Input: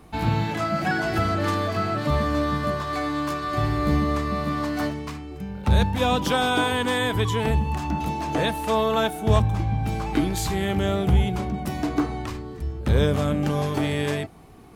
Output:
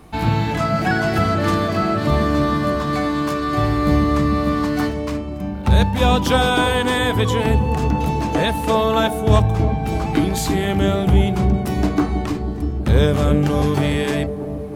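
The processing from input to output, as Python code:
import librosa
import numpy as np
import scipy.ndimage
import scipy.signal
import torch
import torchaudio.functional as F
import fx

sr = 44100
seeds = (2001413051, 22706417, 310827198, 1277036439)

y = fx.echo_wet_lowpass(x, sr, ms=322, feedback_pct=66, hz=520.0, wet_db=-5.0)
y = y * librosa.db_to_amplitude(4.5)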